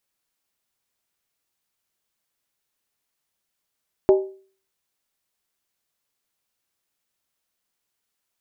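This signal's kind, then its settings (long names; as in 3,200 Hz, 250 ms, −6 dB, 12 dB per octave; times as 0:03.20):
struck skin, lowest mode 385 Hz, decay 0.43 s, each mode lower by 8.5 dB, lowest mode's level −8.5 dB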